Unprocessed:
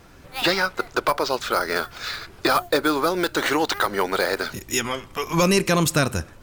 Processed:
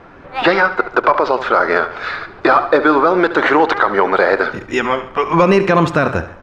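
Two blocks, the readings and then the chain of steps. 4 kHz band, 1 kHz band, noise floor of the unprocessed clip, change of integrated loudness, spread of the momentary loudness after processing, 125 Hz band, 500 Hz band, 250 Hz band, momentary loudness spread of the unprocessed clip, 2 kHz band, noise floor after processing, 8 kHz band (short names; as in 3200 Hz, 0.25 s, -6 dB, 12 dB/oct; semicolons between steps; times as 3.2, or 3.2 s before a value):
-2.0 dB, +10.0 dB, -47 dBFS, +8.0 dB, 7 LU, +4.0 dB, +9.5 dB, +7.5 dB, 9 LU, +8.5 dB, -39 dBFS, under -10 dB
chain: LPF 1600 Hz 12 dB/oct; low shelf 240 Hz -11.5 dB; notches 60/120 Hz; feedback echo 71 ms, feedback 46%, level -14.5 dB; maximiser +14.5 dB; gain -1 dB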